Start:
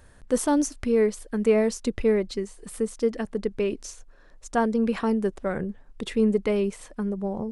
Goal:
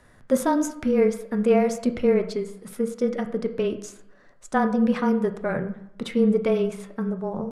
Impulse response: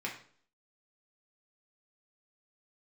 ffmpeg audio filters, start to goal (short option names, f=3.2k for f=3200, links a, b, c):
-filter_complex "[0:a]afreqshift=-21,asetrate=48091,aresample=44100,atempo=0.917004,highshelf=f=9.5k:g=-9,asplit=2[a][b];[1:a]atrim=start_sample=2205,asetrate=28224,aresample=44100[c];[b][c]afir=irnorm=-1:irlink=0,volume=-8dB[d];[a][d]amix=inputs=2:normalize=0,volume=-1.5dB"